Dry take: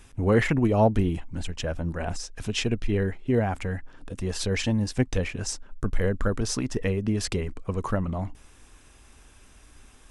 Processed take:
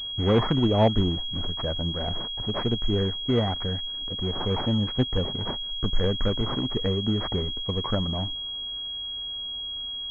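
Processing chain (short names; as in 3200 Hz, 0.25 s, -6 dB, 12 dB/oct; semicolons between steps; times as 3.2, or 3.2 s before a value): decimation with a swept rate 12×, swing 100% 0.97 Hz; pulse-width modulation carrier 3300 Hz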